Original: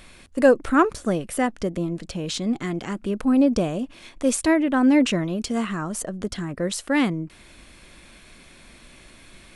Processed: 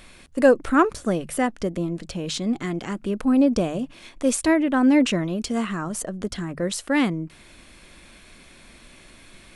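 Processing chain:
mains-hum notches 50/100/150 Hz

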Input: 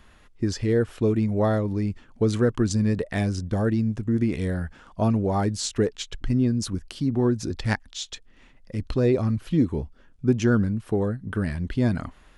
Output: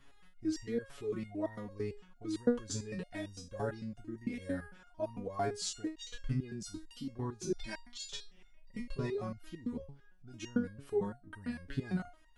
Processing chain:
0:07.46–0:09.16: comb filter 5.1 ms, depth 84%
brickwall limiter −16 dBFS, peak gain reduction 7.5 dB
step-sequenced resonator 8.9 Hz 140–930 Hz
level +4 dB

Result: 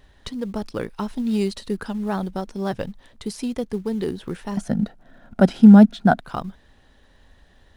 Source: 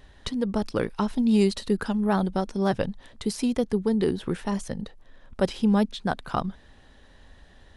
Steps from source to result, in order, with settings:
in parallel at −9 dB: floating-point word with a short mantissa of 2 bits
0:04.57–0:06.20: on the sum: hollow resonant body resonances 210/680/1,400 Hz, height 15 dB, ringing for 20 ms
level −4.5 dB

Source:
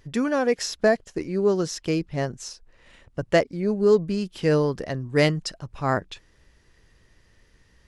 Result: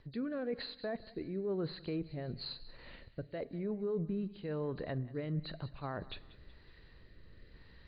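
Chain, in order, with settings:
hearing-aid frequency compression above 3,700 Hz 4 to 1
high-shelf EQ 4,300 Hz −10.5 dB
reversed playback
downward compressor 12 to 1, threshold −33 dBFS, peak gain reduction 19.5 dB
reversed playback
brickwall limiter −30.5 dBFS, peak gain reduction 8.5 dB
rotating-speaker cabinet horn 1 Hz
feedback echo with a high-pass in the loop 186 ms, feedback 49%, high-pass 920 Hz, level −17.5 dB
on a send at −19.5 dB: convolution reverb RT60 0.90 s, pre-delay 16 ms
on the sum: treble cut that deepens with the level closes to 2,100 Hz, closed at −35 dBFS
level +2.5 dB

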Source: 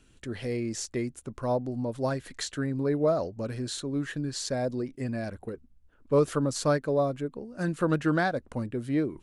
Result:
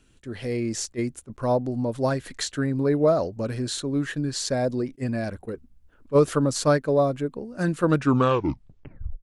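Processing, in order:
turntable brake at the end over 1.30 s
automatic gain control gain up to 5 dB
level that may rise only so fast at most 520 dB per second

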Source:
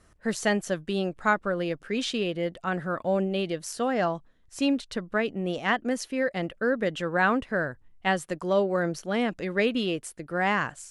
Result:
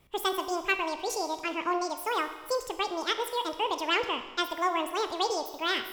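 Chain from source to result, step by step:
four-comb reverb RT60 2.3 s, combs from 30 ms, DRR 8.5 dB
change of speed 1.84×
level −3.5 dB

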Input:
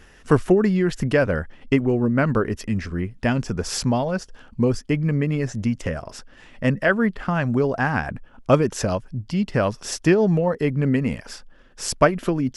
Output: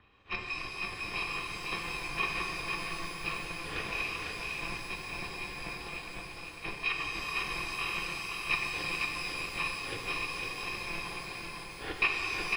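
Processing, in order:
samples in bit-reversed order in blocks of 256 samples
single-tap delay 503 ms −4 dB
single-sideband voice off tune −270 Hz 180–3,500 Hz
reverb with rising layers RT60 3.7 s, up +12 semitones, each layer −8 dB, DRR 0 dB
level −5 dB

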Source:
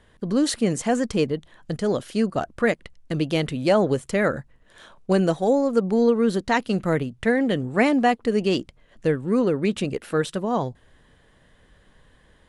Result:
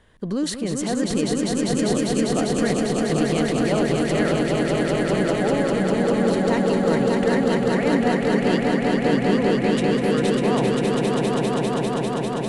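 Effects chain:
brickwall limiter −17 dBFS, peak gain reduction 10.5 dB
echo that builds up and dies away 199 ms, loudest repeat 5, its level −3 dB

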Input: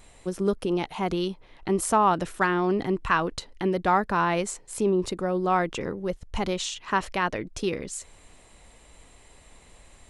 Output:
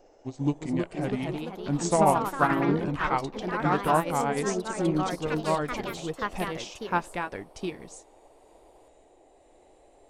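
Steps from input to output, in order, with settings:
pitch glide at a constant tempo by −6 semitones ending unshifted
noise in a band 290–790 Hz −46 dBFS
on a send at −23.5 dB: convolution reverb RT60 0.55 s, pre-delay 3 ms
on the sum: delay with pitch and tempo change per echo 395 ms, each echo +3 semitones, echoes 3
expander for the loud parts 1.5 to 1, over −43 dBFS

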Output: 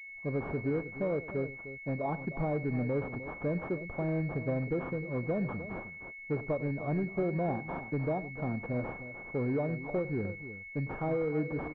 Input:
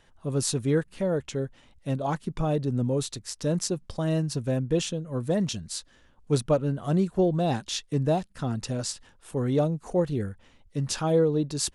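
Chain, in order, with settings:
downward expander −51 dBFS
low-shelf EQ 170 Hz −7 dB
downward compressor, threshold −26 dBFS, peak gain reduction 8 dB
soft clipping −23.5 dBFS, distortion −19 dB
on a send: multi-tap delay 40/100/305 ms −19.5/−16.5/−12.5 dB
on the sum: switching amplifier with a slow clock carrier 2,200 Hz

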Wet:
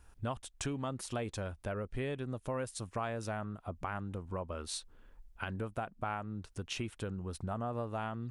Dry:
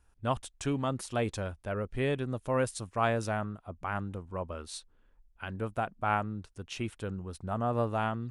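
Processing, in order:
downward compressor 4 to 1, threshold −44 dBFS, peak gain reduction 17.5 dB
level +7 dB

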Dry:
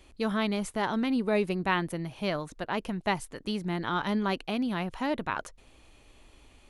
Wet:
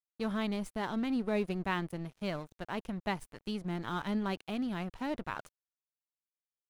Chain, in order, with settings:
dead-zone distortion −43.5 dBFS
low-shelf EQ 210 Hz +7.5 dB
level −6.5 dB

